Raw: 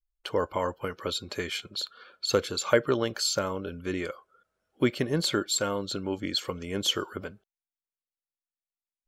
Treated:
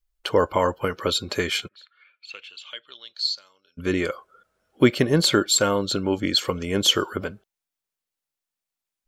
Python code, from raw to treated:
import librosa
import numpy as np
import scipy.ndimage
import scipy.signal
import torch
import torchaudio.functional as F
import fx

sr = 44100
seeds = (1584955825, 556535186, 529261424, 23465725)

y = fx.bandpass_q(x, sr, hz=fx.line((1.67, 1800.0), (3.77, 5500.0)), q=9.7, at=(1.67, 3.77), fade=0.02)
y = y * librosa.db_to_amplitude(8.0)